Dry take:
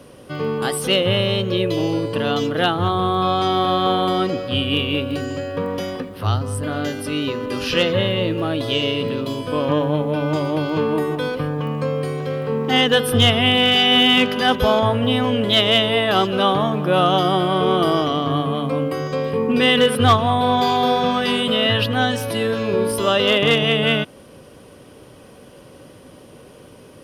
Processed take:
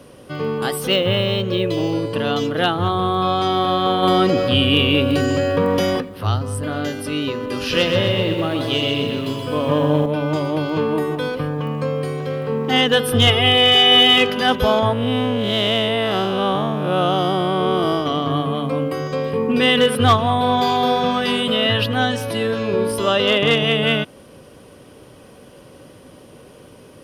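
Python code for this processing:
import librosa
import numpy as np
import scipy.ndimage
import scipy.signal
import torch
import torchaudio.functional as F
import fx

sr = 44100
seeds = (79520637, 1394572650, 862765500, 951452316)

y = fx.resample_linear(x, sr, factor=2, at=(0.71, 1.95))
y = fx.env_flatten(y, sr, amount_pct=50, at=(4.02, 5.99), fade=0.02)
y = fx.echo_crushed(y, sr, ms=127, feedback_pct=55, bits=8, wet_db=-6, at=(7.58, 10.06))
y = fx.comb(y, sr, ms=2.4, depth=0.75, at=(13.27, 14.3))
y = fx.spec_blur(y, sr, span_ms=171.0, at=(14.93, 18.06))
y = fx.high_shelf(y, sr, hz=12000.0, db=-7.0, at=(22.08, 23.59))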